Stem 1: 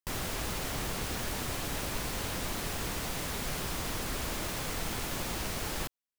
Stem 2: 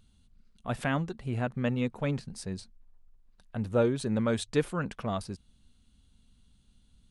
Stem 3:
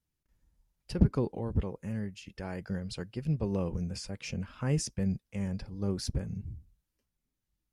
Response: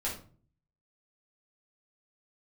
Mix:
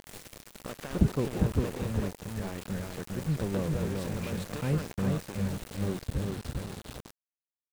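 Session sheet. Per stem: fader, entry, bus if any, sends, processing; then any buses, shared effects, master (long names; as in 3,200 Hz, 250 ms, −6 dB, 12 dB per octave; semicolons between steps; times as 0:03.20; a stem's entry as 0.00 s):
−14.0 dB, 0.00 s, send −15 dB, echo send −9.5 dB, octave-band graphic EQ 125/500/1,000/2,000/8,000 Hz +5/+4/−8/+5/+7 dB; automatic ducking −11 dB, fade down 0.60 s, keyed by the third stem
−6.0 dB, 0.00 s, muted 0:02.08–0:02.61, no send, echo send −21.5 dB, compressor on every frequency bin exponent 0.4; downward compressor 8 to 1, threshold −30 dBFS, peak gain reduction 12.5 dB
0.0 dB, 0.00 s, no send, echo send −3.5 dB, Gaussian smoothing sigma 2.7 samples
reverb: on, RT60 0.45 s, pre-delay 6 ms
echo: repeating echo 401 ms, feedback 34%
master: centre clipping without the shift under −37.5 dBFS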